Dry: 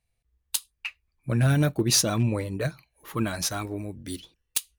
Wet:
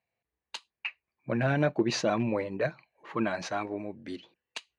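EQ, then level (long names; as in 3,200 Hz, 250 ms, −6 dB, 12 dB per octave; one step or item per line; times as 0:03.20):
loudspeaker in its box 290–5,300 Hz, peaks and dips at 290 Hz −5 dB, 440 Hz −4 dB, 1,300 Hz −6 dB, 3,500 Hz −8 dB, 5,300 Hz −9 dB
high-shelf EQ 3,500 Hz −11.5 dB
+4.5 dB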